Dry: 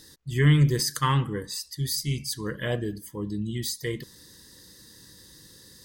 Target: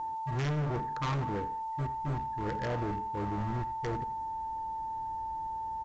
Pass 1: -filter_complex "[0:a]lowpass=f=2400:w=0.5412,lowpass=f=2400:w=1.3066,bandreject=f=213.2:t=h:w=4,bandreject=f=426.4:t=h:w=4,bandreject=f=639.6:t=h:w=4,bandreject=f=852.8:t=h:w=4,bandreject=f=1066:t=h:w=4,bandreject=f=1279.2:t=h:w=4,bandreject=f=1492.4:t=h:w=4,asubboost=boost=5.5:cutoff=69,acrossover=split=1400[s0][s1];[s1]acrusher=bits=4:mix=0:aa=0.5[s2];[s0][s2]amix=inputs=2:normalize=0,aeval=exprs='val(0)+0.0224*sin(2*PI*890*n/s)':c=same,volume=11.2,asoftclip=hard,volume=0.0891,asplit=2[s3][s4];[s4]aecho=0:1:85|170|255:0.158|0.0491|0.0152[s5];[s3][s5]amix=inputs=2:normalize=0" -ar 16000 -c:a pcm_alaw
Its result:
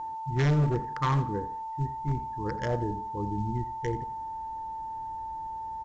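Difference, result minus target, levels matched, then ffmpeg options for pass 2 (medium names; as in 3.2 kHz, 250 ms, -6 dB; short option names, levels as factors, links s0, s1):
overload inside the chain: distortion -7 dB
-filter_complex "[0:a]lowpass=f=2400:w=0.5412,lowpass=f=2400:w=1.3066,bandreject=f=213.2:t=h:w=4,bandreject=f=426.4:t=h:w=4,bandreject=f=639.6:t=h:w=4,bandreject=f=852.8:t=h:w=4,bandreject=f=1066:t=h:w=4,bandreject=f=1279.2:t=h:w=4,bandreject=f=1492.4:t=h:w=4,asubboost=boost=5.5:cutoff=69,acrossover=split=1400[s0][s1];[s1]acrusher=bits=4:mix=0:aa=0.5[s2];[s0][s2]amix=inputs=2:normalize=0,aeval=exprs='val(0)+0.0224*sin(2*PI*890*n/s)':c=same,volume=29.9,asoftclip=hard,volume=0.0335,asplit=2[s3][s4];[s4]aecho=0:1:85|170|255:0.158|0.0491|0.0152[s5];[s3][s5]amix=inputs=2:normalize=0" -ar 16000 -c:a pcm_alaw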